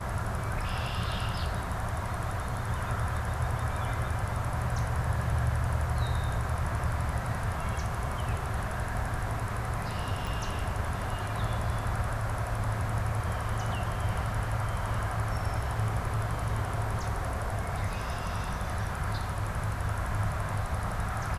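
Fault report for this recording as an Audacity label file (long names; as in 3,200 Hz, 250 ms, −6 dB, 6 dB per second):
10.270000	10.270000	click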